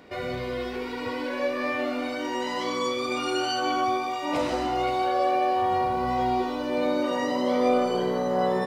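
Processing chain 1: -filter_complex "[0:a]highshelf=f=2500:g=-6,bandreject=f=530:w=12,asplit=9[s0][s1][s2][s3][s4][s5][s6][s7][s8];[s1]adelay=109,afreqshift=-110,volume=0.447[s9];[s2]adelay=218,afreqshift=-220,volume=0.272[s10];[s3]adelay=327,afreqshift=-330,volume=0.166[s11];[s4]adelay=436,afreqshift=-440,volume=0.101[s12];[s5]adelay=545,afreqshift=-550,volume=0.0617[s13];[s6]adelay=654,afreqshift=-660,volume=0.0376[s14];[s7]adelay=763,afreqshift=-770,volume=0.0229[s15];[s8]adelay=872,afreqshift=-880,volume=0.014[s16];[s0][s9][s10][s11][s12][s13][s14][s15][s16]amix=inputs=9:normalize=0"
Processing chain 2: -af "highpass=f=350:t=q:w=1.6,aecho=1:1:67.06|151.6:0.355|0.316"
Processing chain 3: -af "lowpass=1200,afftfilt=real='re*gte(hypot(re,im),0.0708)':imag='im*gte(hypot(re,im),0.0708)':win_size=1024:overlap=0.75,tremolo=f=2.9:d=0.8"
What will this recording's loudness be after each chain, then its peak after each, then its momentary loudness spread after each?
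-26.0 LUFS, -22.5 LUFS, -31.5 LUFS; -11.0 dBFS, -8.0 dBFS, -14.5 dBFS; 8 LU, 10 LU, 8 LU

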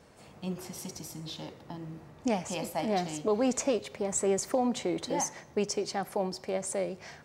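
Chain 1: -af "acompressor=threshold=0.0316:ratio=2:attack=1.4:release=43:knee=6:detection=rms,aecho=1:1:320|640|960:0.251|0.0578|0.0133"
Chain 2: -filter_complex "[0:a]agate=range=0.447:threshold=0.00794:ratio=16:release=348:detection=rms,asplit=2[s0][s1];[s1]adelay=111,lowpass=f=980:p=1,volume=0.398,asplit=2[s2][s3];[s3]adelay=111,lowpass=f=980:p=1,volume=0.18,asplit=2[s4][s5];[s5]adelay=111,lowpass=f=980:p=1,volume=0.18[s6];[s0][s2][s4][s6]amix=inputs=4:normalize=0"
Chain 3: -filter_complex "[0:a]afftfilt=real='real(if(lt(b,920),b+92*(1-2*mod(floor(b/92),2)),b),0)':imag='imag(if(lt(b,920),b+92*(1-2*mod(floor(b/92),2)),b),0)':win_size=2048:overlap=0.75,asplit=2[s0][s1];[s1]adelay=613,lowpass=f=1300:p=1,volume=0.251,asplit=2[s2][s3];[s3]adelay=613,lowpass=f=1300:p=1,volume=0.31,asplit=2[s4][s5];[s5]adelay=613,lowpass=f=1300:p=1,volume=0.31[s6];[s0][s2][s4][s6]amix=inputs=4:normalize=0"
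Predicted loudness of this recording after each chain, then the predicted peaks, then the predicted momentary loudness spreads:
-35.5 LUFS, -32.0 LUFS, -29.5 LUFS; -20.5 dBFS, -15.5 dBFS, -15.0 dBFS; 10 LU, 13 LU, 14 LU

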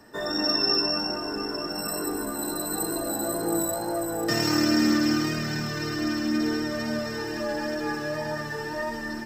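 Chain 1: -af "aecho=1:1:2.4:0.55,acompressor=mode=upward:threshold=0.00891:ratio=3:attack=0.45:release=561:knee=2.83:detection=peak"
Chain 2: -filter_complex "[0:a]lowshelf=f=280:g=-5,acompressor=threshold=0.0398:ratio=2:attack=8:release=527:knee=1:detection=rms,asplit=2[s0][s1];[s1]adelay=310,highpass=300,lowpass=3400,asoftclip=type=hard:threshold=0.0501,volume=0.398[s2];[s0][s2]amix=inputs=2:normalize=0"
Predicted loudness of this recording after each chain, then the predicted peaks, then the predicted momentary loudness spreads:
-25.5 LUFS, -30.5 LUFS; -10.0 dBFS, -17.5 dBFS; 10 LU, 4 LU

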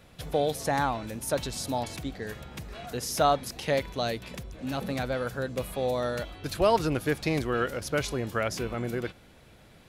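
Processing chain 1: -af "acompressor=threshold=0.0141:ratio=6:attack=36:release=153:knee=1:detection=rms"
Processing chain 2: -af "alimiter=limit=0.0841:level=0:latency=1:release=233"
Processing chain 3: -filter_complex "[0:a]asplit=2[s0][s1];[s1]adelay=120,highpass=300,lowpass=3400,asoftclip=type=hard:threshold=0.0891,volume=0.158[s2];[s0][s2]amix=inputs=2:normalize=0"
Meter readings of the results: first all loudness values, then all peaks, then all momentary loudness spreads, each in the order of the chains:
-39.0 LUFS, -33.5 LUFS, -30.0 LUFS; -23.5 dBFS, -21.5 dBFS, -11.5 dBFS; 4 LU, 7 LU, 12 LU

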